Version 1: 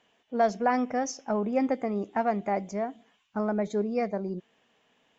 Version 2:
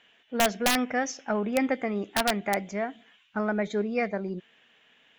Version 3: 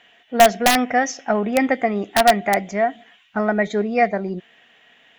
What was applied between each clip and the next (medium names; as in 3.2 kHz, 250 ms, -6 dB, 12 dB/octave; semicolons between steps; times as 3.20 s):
high-order bell 2.3 kHz +9.5 dB; integer overflow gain 14 dB
small resonant body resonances 710/1900 Hz, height 10 dB; trim +6.5 dB